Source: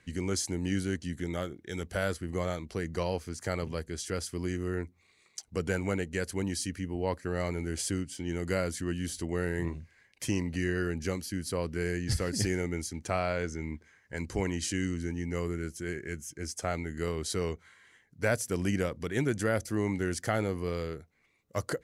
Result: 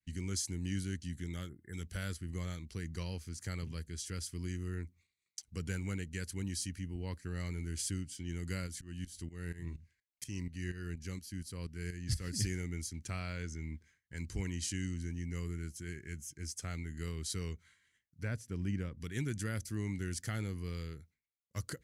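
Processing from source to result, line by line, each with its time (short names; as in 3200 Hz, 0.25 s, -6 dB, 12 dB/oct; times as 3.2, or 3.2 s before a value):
1.49–1.74 spectral delete 2100–7600 Hz
8.66–12.23 tremolo saw up 4.2 Hz, depth 95% -> 60%
18.23–18.98 LPF 1400 Hz 6 dB/oct
whole clip: expander -53 dBFS; passive tone stack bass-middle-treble 6-0-2; gain +11 dB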